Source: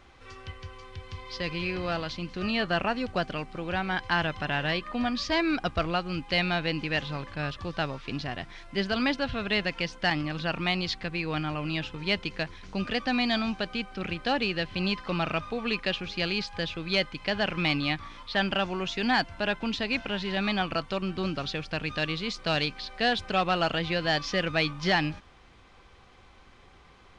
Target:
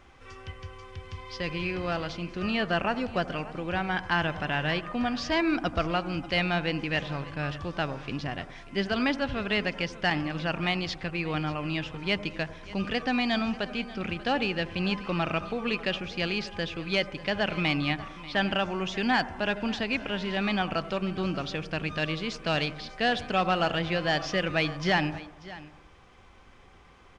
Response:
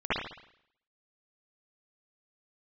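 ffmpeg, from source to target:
-filter_complex "[0:a]equalizer=f=4.1k:w=3.8:g=-6,aecho=1:1:588:0.126,asplit=2[a][b];[1:a]atrim=start_sample=2205,asetrate=31752,aresample=44100,lowpass=1.3k[c];[b][c]afir=irnorm=-1:irlink=0,volume=-27dB[d];[a][d]amix=inputs=2:normalize=0"

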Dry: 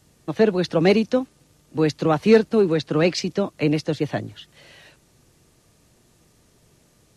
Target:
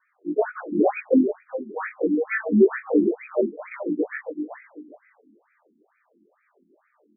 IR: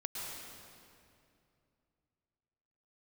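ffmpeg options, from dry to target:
-filter_complex "[0:a]afftfilt=real='re':imag='-im':win_size=2048:overlap=0.75,aemphasis=mode=reproduction:type=cd,acrossover=split=120|3400[a][b][c];[c]dynaudnorm=f=170:g=7:m=6.5dB[d];[a][b][d]amix=inputs=3:normalize=0,bandreject=f=4k:w=12,asplit=2[e][f];[f]aecho=0:1:383|766|1149:0.335|0.0904|0.0244[g];[e][g]amix=inputs=2:normalize=0,afftfilt=real='re*between(b*sr/1024,250*pow(1800/250,0.5+0.5*sin(2*PI*2.2*pts/sr))/1.41,250*pow(1800/250,0.5+0.5*sin(2*PI*2.2*pts/sr))*1.41)':imag='im*between(b*sr/1024,250*pow(1800/250,0.5+0.5*sin(2*PI*2.2*pts/sr))/1.41,250*pow(1800/250,0.5+0.5*sin(2*PI*2.2*pts/sr))*1.41)':win_size=1024:overlap=0.75,volume=8.5dB"

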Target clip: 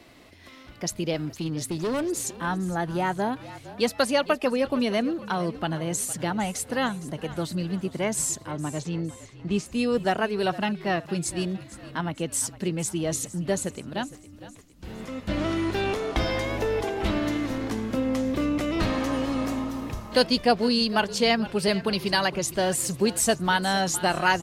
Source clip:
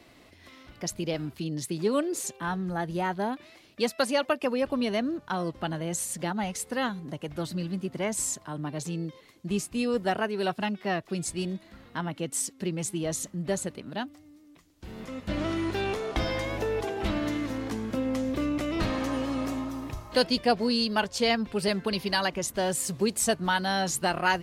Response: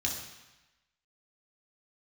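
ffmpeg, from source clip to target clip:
-filter_complex "[0:a]asettb=1/sr,asplit=3[a][b][c];[a]atrim=end=1.254[d];[b]atrim=start=1.25:end=2.1,asetpts=PTS-STARTPTS,afade=t=in:d=0.004:c=qsin,afade=t=out:st=0.846:d=0.004:c=qsin,asoftclip=type=hard:threshold=-27dB[e];[c]atrim=start=2.096[f];[d][e]acrossfade=d=0.004:c1=hsin:c2=qsin[g];[g][f]acrossfade=d=0.004:c1=qsin:c2=hsin,asettb=1/sr,asplit=3[h][i][j];[h]atrim=end=8.514[k];[i]atrim=start=8.51:end=9.66,asetpts=PTS-STARTPTS,afade=t=in:d=0.004:c=qsin,afade=t=out:st=1.146:d=0.004:c=qsin,lowpass=5k[l];[j]atrim=start=9.656[m];[k][l]acrossfade=d=0.004:c1=hsin:c2=qsin[n];[n][m]acrossfade=d=0.004:c1=qsin:c2=hsin,asplit=5[o][p][q][r][s];[p]adelay=460,afreqshift=-41,volume=-16.5dB[t];[q]adelay=920,afreqshift=-82,volume=-22.9dB[u];[r]adelay=1380,afreqshift=-123,volume=-29.3dB[v];[s]adelay=1840,afreqshift=-164,volume=-35.6dB[w];[o][t][u][v][w]amix=inputs=5:normalize=0,volume=3dB"

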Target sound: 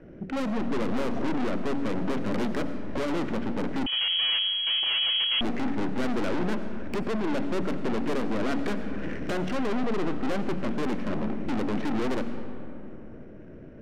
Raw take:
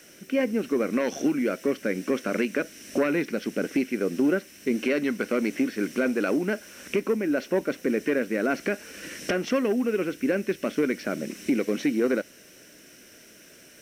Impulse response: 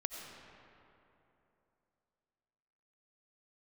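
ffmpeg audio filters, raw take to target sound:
-filter_complex "[0:a]adynamicsmooth=sensitivity=7.5:basefreq=830,aemphasis=mode=reproduction:type=riaa,bandreject=f=46.67:t=h:w=4,bandreject=f=93.34:t=h:w=4,bandreject=f=140.01:t=h:w=4,bandreject=f=186.68:t=h:w=4,bandreject=f=233.35:t=h:w=4,bandreject=f=280.02:t=h:w=4,aeval=exprs='(tanh(44.7*val(0)+0.25)-tanh(0.25))/44.7':c=same,asplit=2[a][b];[1:a]atrim=start_sample=2205[c];[b][c]afir=irnorm=-1:irlink=0,volume=0.5dB[d];[a][d]amix=inputs=2:normalize=0,asettb=1/sr,asplit=3[e][f][g];[e]atrim=end=3.864[h];[f]atrim=start=3.86:end=5.41,asetpts=PTS-STARTPTS,afade=t=in:d=0.004:c=qsin,afade=t=out:st=1.546:d=0.004:c=qsin,lowpass=f=2.8k:t=q:w=0.5098,lowpass=f=2.8k:t=q:w=0.6013,lowpass=f=2.8k:t=q:w=0.9,lowpass=f=2.8k:t=q:w=2.563,afreqshift=-3300[i];[g]atrim=start=5.406[j];[h][i]acrossfade=d=0.004:c1=hsin:c2=qsin[k];[k][j]acrossfade=d=0.004:c1=qsin:c2=hsin"

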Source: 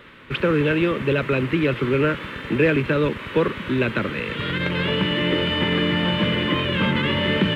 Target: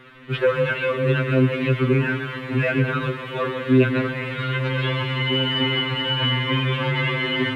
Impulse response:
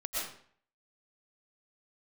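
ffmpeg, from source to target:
-filter_complex "[0:a]asplit=2[a][b];[1:a]atrim=start_sample=2205,asetrate=37044,aresample=44100,lowpass=3.2k[c];[b][c]afir=irnorm=-1:irlink=0,volume=-10.5dB[d];[a][d]amix=inputs=2:normalize=0,afftfilt=real='re*2.45*eq(mod(b,6),0)':imag='im*2.45*eq(mod(b,6),0)':win_size=2048:overlap=0.75"

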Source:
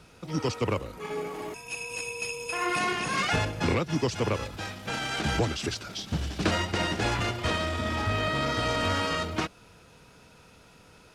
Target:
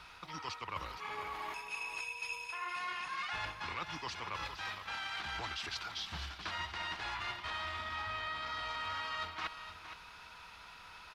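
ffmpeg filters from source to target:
-af "equalizer=f=125:t=o:w=1:g=-10,equalizer=f=250:t=o:w=1:g=-9,equalizer=f=500:t=o:w=1:g=-10,equalizer=f=1k:t=o:w=1:g=10,equalizer=f=2k:t=o:w=1:g=5,equalizer=f=4k:t=o:w=1:g=7,equalizer=f=8k:t=o:w=1:g=-7,areverse,acompressor=threshold=-37dB:ratio=6,areverse,aecho=1:1:464:0.316,volume=-2dB"

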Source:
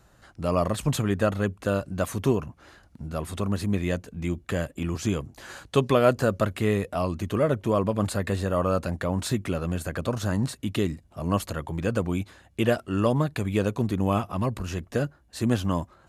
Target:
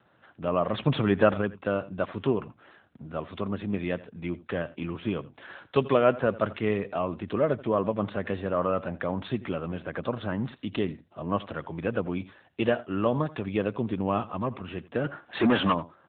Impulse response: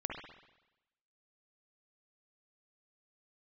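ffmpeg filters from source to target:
-filter_complex "[0:a]lowshelf=f=150:g=-11,asettb=1/sr,asplit=3[a][b][c];[a]atrim=end=8.714[d];[b]atrim=start=8.71:end=9.25,asetpts=PTS-STARTPTS,afade=t=in:d=0.004:c=qsin,afade=t=out:st=0.536:d=0.004:c=qsin,asoftclip=type=hard:threshold=-16.5dB[e];[c]atrim=start=9.246[f];[d][e]acrossfade=d=0.004:c1=hsin:c2=qsin[g];[g][f]acrossfade=d=0.004:c1=qsin:c2=hsin,asplit=3[h][i][j];[h]afade=t=out:st=15.04:d=0.02[k];[i]asplit=2[l][m];[m]highpass=f=720:p=1,volume=28dB,asoftclip=type=tanh:threshold=-12.5dB[n];[l][n]amix=inputs=2:normalize=0,lowpass=f=2.8k:p=1,volume=-6dB,afade=t=in:st=15.04:d=0.02,afade=t=out:st=15.72:d=0.02[o];[j]afade=t=in:st=15.72:d=0.02[p];[k][o][p]amix=inputs=3:normalize=0,aecho=1:1:84:0.119,asplit=3[q][r][s];[q]afade=t=out:st=0.72:d=0.02[t];[r]acontrast=28,afade=t=in:st=0.72:d=0.02,afade=t=out:st=1.4:d=0.02[u];[s]afade=t=in:st=1.4:d=0.02[v];[t][u][v]amix=inputs=3:normalize=0" -ar 8000 -c:a libopencore_amrnb -b:a 10200

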